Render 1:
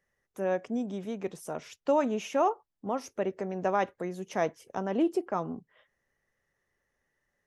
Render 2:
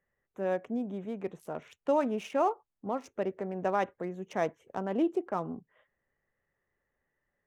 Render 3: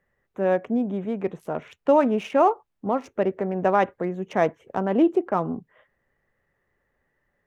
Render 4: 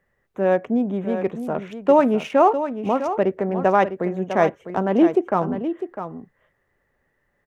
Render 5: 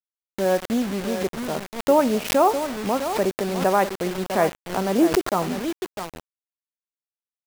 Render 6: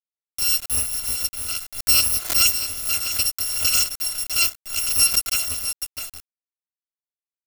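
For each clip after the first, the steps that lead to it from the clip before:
local Wiener filter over 9 samples; trim -1.5 dB
tone controls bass +1 dB, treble -8 dB; trim +9 dB
delay 653 ms -10 dB; trim +3 dB
feedback delay 92 ms, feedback 58%, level -23 dB; bit crusher 5-bit; swell ahead of each attack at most 130 dB/s; trim -2.5 dB
bit-reversed sample order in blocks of 256 samples

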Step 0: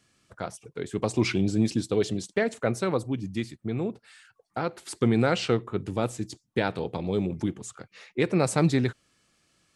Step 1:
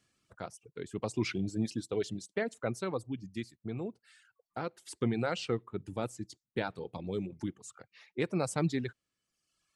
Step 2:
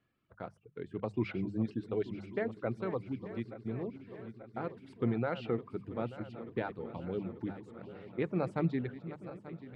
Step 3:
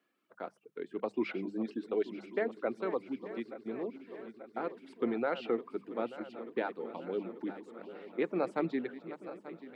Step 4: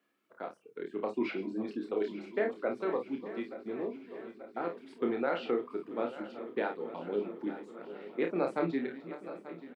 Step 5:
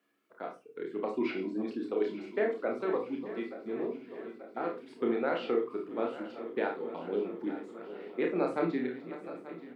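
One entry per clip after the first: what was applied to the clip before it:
reverb removal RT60 1.1 s; trim -7.5 dB
backward echo that repeats 443 ms, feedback 79%, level -13.5 dB; distance through air 460 m; hum notches 50/100/150/200 Hz
high-pass 250 Hz 24 dB/octave; trim +2.5 dB
early reflections 29 ms -4.5 dB, 53 ms -10 dB
reverberation RT60 0.20 s, pre-delay 29 ms, DRR 6 dB

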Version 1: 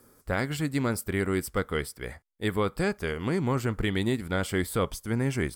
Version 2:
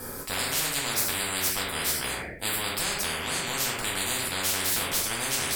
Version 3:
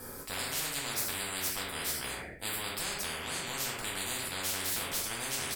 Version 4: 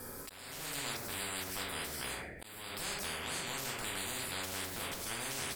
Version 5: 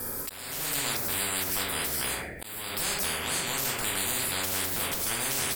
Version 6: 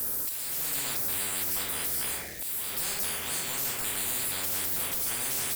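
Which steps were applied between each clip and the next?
reverberation RT60 0.45 s, pre-delay 4 ms, DRR -4 dB; spectrum-flattening compressor 10:1; trim -4 dB
feedback delay 67 ms, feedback 40%, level -19 dB; trim -7 dB
de-esser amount 65%; slow attack 478 ms; swell ahead of each attack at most 36 dB/s; trim -2 dB
treble shelf 11 kHz +10.5 dB; trim +7.5 dB
zero-crossing glitches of -25 dBFS; trim -5.5 dB

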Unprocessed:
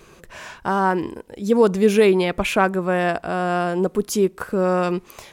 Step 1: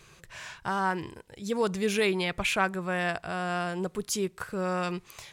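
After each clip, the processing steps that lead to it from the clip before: graphic EQ 125/250/500/2000/4000/8000 Hz +8/-7/-3/+4/+5/+5 dB; trim -8.5 dB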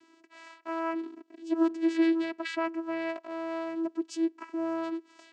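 vocoder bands 8, saw 328 Hz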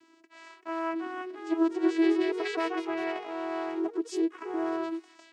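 ever faster or slower copies 413 ms, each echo +2 st, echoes 3, each echo -6 dB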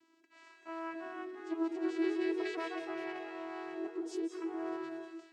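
reverberation RT60 0.60 s, pre-delay 166 ms, DRR 4.5 dB; trim -9 dB

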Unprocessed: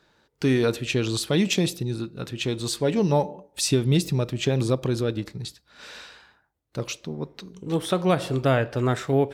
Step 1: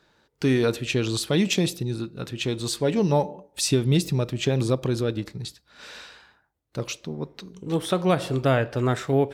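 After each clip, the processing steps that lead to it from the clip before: no audible change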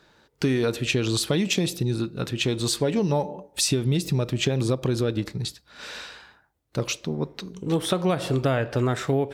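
compression, threshold -24 dBFS, peak gain reduction 8.5 dB; trim +4.5 dB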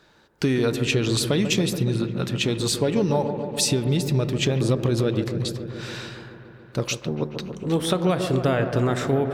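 feedback echo behind a low-pass 142 ms, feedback 78%, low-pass 1.5 kHz, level -9 dB; trim +1 dB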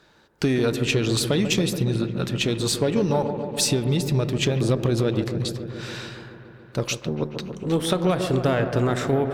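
Chebyshev shaper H 6 -28 dB, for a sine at -8 dBFS

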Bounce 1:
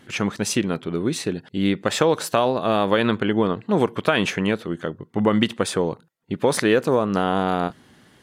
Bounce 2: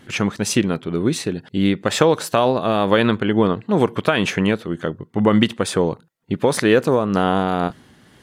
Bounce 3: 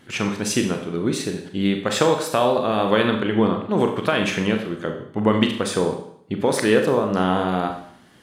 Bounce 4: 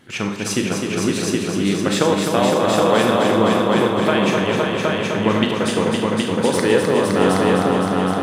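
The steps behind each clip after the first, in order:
bass shelf 130 Hz +4.5 dB; tremolo triangle 2.1 Hz, depth 30%; trim +3.5 dB
bass shelf 140 Hz -4.5 dB; Schroeder reverb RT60 0.63 s, combs from 29 ms, DRR 4 dB; trim -3 dB
multi-head delay 257 ms, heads all three, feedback 57%, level -6 dB

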